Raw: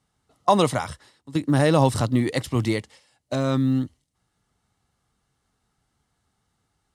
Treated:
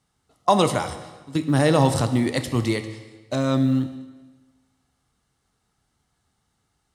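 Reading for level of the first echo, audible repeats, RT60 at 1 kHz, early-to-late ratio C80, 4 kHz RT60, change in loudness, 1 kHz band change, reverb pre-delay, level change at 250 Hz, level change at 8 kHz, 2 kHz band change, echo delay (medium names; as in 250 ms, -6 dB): no echo, no echo, 1.2 s, 12.0 dB, 1.2 s, +0.5 dB, +0.5 dB, 19 ms, +1.0 dB, +2.5 dB, +1.0 dB, no echo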